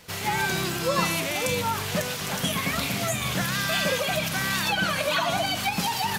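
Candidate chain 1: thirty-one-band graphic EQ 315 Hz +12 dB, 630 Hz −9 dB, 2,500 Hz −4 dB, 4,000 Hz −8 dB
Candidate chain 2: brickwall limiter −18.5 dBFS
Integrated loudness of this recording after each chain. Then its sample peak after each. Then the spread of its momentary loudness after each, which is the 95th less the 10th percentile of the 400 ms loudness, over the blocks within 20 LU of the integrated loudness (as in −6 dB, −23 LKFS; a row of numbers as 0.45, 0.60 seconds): −26.0, −27.5 LKFS; −10.0, −18.5 dBFS; 3, 2 LU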